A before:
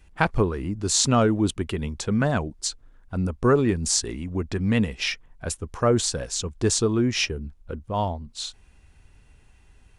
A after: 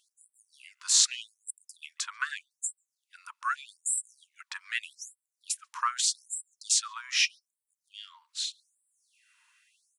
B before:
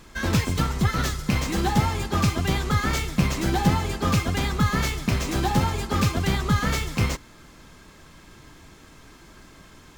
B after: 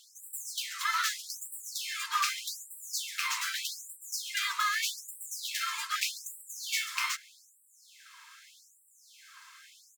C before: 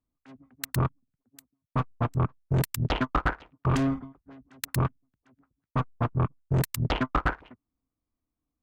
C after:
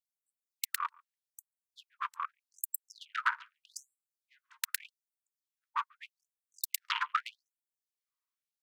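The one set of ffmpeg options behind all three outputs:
ffmpeg -i in.wav -filter_complex "[0:a]asplit=2[link_01][link_02];[link_02]adelay=140,highpass=300,lowpass=3400,asoftclip=type=hard:threshold=-11dB,volume=-27dB[link_03];[link_01][link_03]amix=inputs=2:normalize=0,afftfilt=real='re*gte(b*sr/1024,870*pow(7600/870,0.5+0.5*sin(2*PI*0.82*pts/sr)))':imag='im*gte(b*sr/1024,870*pow(7600/870,0.5+0.5*sin(2*PI*0.82*pts/sr)))':win_size=1024:overlap=0.75" out.wav

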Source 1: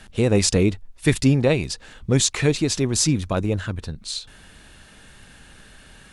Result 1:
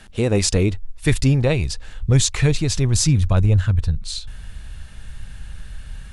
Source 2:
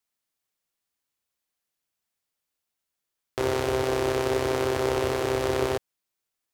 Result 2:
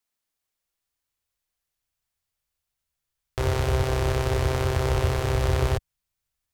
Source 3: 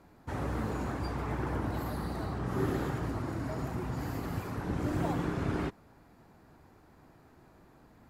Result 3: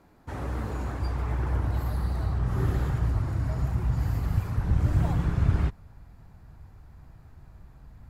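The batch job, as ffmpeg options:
ffmpeg -i in.wav -af "asubboost=boost=11:cutoff=95" out.wav

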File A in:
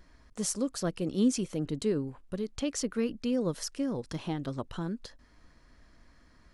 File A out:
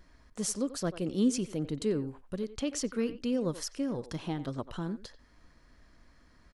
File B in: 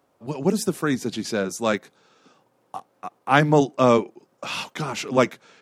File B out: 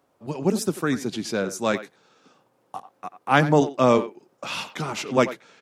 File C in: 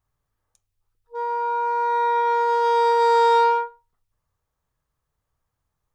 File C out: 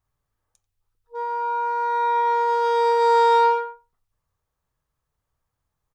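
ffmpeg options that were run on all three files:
ffmpeg -i in.wav -filter_complex "[0:a]asplit=2[link_01][link_02];[link_02]adelay=90,highpass=300,lowpass=3400,asoftclip=type=hard:threshold=-9dB,volume=-13dB[link_03];[link_01][link_03]amix=inputs=2:normalize=0,volume=-1dB" out.wav

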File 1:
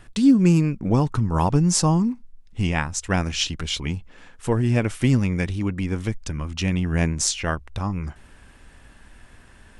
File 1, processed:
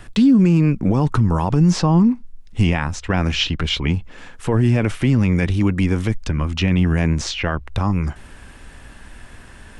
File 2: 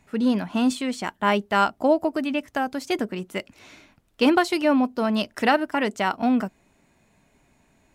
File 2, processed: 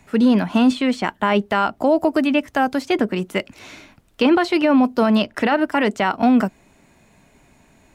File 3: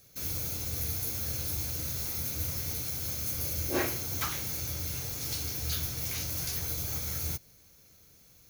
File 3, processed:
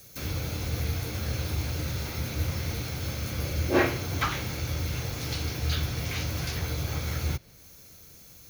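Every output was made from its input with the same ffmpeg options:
ffmpeg -i in.wav -filter_complex "[0:a]acrossover=split=270|4100[link_01][link_02][link_03];[link_03]acompressor=threshold=-50dB:ratio=10[link_04];[link_01][link_02][link_04]amix=inputs=3:normalize=0,alimiter=limit=-15.5dB:level=0:latency=1:release=34,volume=8dB" out.wav

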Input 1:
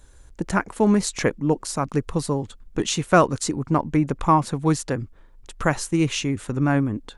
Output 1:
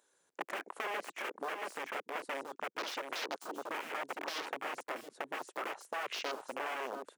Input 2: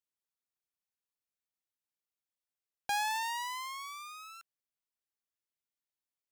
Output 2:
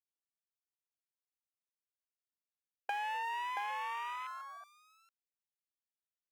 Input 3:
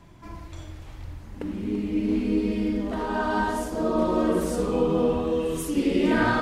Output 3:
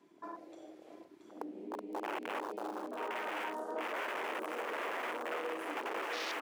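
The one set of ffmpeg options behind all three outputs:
ffmpeg -i in.wav -filter_complex "[0:a]aeval=exprs='(mod(10*val(0)+1,2)-1)/10':channel_layout=same,asplit=2[link_01][link_02];[link_02]aecho=0:1:677:0.562[link_03];[link_01][link_03]amix=inputs=2:normalize=0,acompressor=threshold=-36dB:ratio=12,afwtdn=0.00708,highpass=frequency=350:width=0.5412,highpass=frequency=350:width=1.3066,volume=2.5dB" out.wav

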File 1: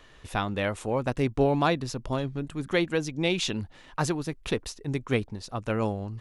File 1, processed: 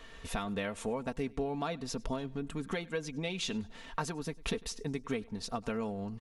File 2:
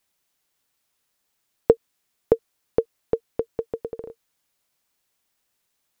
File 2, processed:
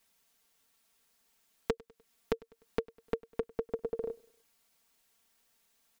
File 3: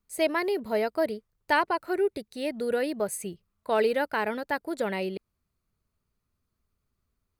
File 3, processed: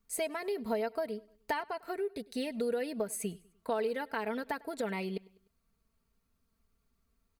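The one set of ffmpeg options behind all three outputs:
ffmpeg -i in.wav -af "acompressor=threshold=-34dB:ratio=8,aecho=1:1:4.4:0.61,aecho=1:1:100|200|300:0.0631|0.0303|0.0145,volume=1dB" out.wav

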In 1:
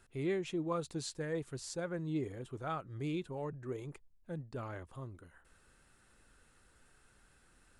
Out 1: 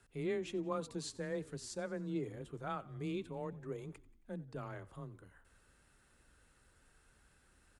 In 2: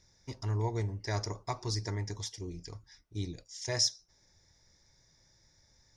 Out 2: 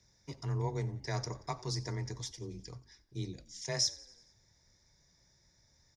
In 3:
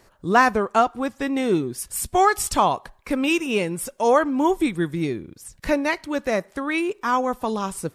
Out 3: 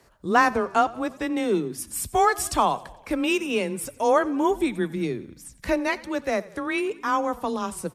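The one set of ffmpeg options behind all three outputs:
ffmpeg -i in.wav -filter_complex "[0:a]afreqshift=19,asplit=6[link_01][link_02][link_03][link_04][link_05][link_06];[link_02]adelay=90,afreqshift=-32,volume=-20.5dB[link_07];[link_03]adelay=180,afreqshift=-64,volume=-25.1dB[link_08];[link_04]adelay=270,afreqshift=-96,volume=-29.7dB[link_09];[link_05]adelay=360,afreqshift=-128,volume=-34.2dB[link_10];[link_06]adelay=450,afreqshift=-160,volume=-38.8dB[link_11];[link_01][link_07][link_08][link_09][link_10][link_11]amix=inputs=6:normalize=0,volume=-2.5dB" out.wav

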